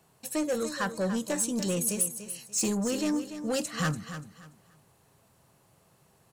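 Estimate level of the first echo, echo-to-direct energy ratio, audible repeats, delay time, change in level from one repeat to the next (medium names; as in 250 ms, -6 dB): -11.0 dB, -10.5 dB, 3, 290 ms, -11.5 dB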